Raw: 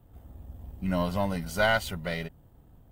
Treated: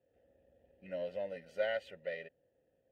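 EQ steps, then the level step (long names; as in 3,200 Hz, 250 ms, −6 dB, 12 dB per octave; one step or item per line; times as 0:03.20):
formant filter e
0.0 dB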